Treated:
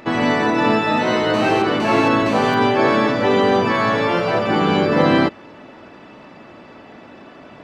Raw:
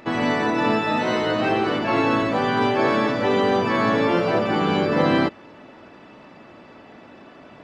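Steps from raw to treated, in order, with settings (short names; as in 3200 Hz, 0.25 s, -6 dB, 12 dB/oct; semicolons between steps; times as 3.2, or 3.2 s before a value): 1.34–2.54 GSM buzz -30 dBFS; 3.72–4.47 bell 280 Hz -6.5 dB 1.3 oct; gain +4 dB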